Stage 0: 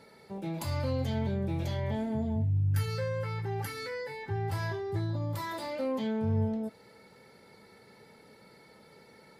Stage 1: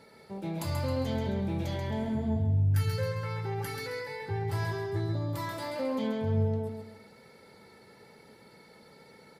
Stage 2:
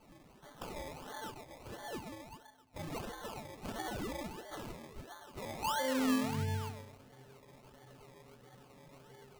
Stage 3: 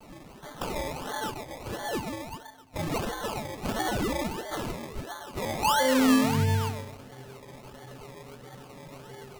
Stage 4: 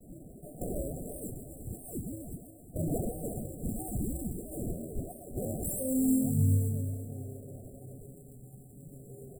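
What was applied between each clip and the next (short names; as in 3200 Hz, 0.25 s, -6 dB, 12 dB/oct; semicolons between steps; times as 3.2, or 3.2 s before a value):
feedback echo 0.134 s, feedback 37%, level -5.5 dB
metallic resonator 130 Hz, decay 0.34 s, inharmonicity 0.008; high-pass sweep 1500 Hz -> 90 Hz, 5.52–6.54; decimation with a swept rate 24×, swing 60% 1.5 Hz; gain +7.5 dB
in parallel at -5 dB: soft clip -33.5 dBFS, distortion -11 dB; on the sum: vibrato 0.5 Hz 26 cents; gain +8 dB
FFT band-reject 770–7300 Hz; phaser stages 2, 0.44 Hz, lowest notch 550–1700 Hz; on a send: feedback echo 0.356 s, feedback 42%, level -12 dB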